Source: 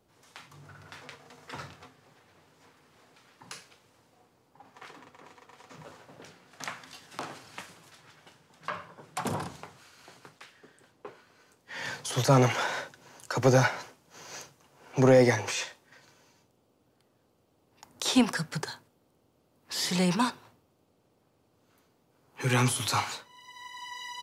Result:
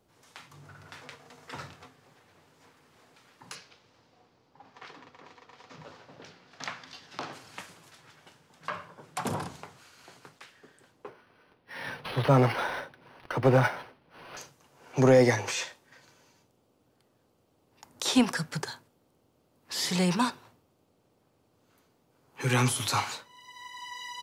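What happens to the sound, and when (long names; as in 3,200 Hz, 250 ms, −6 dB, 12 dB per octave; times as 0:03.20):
0:03.55–0:07.33: high shelf with overshoot 6,800 Hz −10 dB, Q 1.5
0:11.07–0:14.37: linearly interpolated sample-rate reduction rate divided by 6×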